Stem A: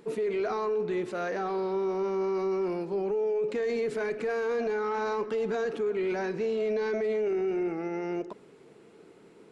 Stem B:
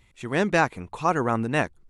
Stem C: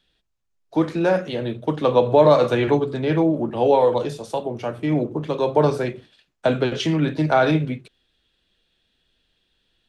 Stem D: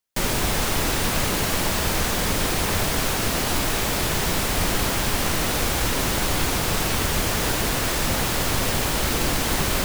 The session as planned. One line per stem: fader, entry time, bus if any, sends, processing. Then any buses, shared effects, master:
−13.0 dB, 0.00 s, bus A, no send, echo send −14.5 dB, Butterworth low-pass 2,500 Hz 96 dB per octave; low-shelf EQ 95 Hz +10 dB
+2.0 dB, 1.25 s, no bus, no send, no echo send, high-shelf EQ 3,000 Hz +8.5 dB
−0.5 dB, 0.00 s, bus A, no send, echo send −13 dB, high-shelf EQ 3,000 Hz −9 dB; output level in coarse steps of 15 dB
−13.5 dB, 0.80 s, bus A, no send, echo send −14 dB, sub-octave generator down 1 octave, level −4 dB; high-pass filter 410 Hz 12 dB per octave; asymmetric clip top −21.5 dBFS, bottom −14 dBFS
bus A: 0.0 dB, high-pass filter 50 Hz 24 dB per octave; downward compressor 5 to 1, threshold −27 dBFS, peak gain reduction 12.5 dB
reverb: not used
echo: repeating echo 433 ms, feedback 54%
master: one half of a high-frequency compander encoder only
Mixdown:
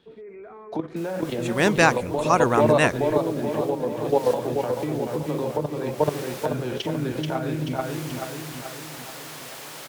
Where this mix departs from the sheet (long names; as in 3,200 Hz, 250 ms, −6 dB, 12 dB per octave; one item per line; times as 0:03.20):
stem C −0.5 dB → +11.0 dB
master: missing one half of a high-frequency compander encoder only